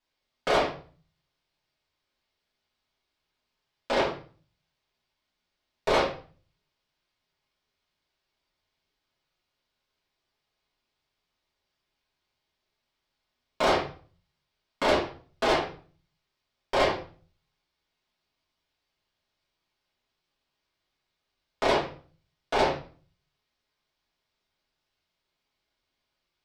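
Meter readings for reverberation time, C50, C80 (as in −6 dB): 0.40 s, 6.5 dB, 12.0 dB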